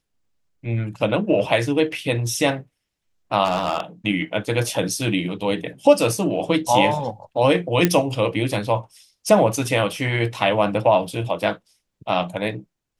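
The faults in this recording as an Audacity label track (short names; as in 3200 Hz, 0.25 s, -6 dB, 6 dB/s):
3.440000	3.800000	clipped -15.5 dBFS
7.850000	7.850000	pop -2 dBFS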